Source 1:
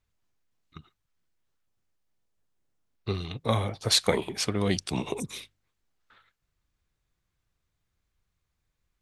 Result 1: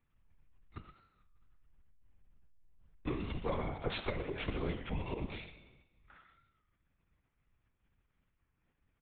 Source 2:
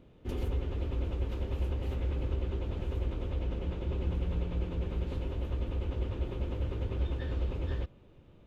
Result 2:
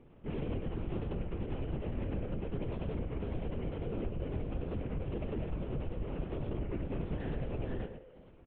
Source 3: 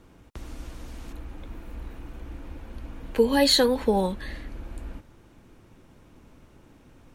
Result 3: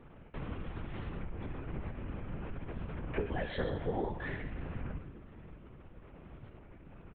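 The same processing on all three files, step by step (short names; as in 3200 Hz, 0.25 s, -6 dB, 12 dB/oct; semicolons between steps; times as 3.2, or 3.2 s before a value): LPF 2900 Hz 24 dB/oct; compressor 6:1, threshold -32 dBFS; resonator 130 Hz, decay 1.2 s, harmonics all, mix 80%; echo 0.119 s -10.5 dB; LPC vocoder at 8 kHz whisper; record warp 33 1/3 rpm, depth 100 cents; gain +11.5 dB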